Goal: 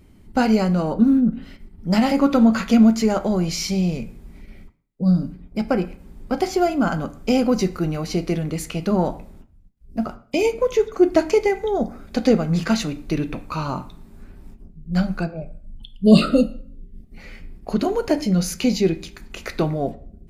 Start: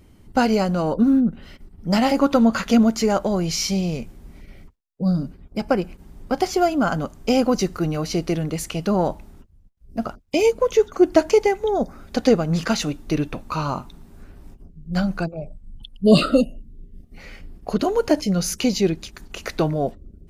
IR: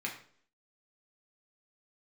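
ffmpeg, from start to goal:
-filter_complex "[0:a]lowshelf=f=180:g=7.5,asplit=2[a][b];[1:a]atrim=start_sample=2205[c];[b][c]afir=irnorm=-1:irlink=0,volume=-7.5dB[d];[a][d]amix=inputs=2:normalize=0,volume=-4dB"

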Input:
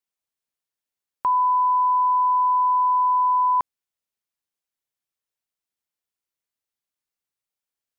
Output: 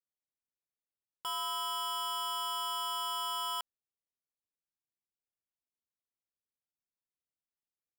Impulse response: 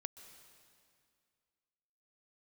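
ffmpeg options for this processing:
-af "adynamicsmooth=sensitivity=5.5:basefreq=720,acrusher=samples=7:mix=1:aa=0.000001,aeval=exprs='0.0473*(abs(mod(val(0)/0.0473+3,4)-2)-1)':c=same,volume=-6dB"

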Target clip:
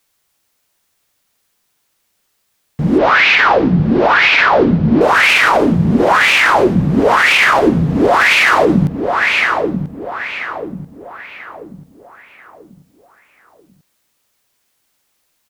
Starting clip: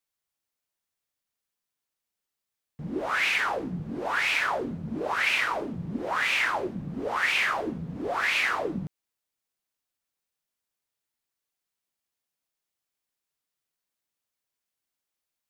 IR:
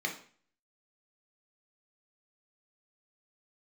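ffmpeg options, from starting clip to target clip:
-filter_complex "[0:a]asettb=1/sr,asplit=3[a][b][c];[a]atrim=end=2.984[d];[b]atrim=start=2.98:end=5.01,asetpts=PTS-STARTPTS,afade=t=in:d=0.004:c=qsin,afade=t=out:st=2.026:d=0.004:c=qsin,lowpass=f=4.9k:w=0.5412,lowpass=f=4.9k:w=1.3066[e];[c]atrim=start=5.006[f];[d][e]acrossfade=d=0.004:c1=hsin:c2=qsin[g];[g][f]acrossfade=d=0.004:c1=qsin:c2=hsin,asplit=2[h][i];[i]adelay=988,lowpass=f=3k:p=1,volume=-8dB,asplit=2[j][k];[k]adelay=988,lowpass=f=3k:p=1,volume=0.4,asplit=2[l][m];[m]adelay=988,lowpass=f=3k:p=1,volume=0.4,asplit=2[n][o];[o]adelay=988,lowpass=f=3k:p=1,volume=0.4,asplit=2[p][q];[q]adelay=988,lowpass=f=3k:p=1,volume=0.4[r];[h][j][l][n][p][r]amix=inputs=6:normalize=0,alimiter=level_in=22dB:limit=-1dB:release=50:level=0:latency=1,volume=-1dB"

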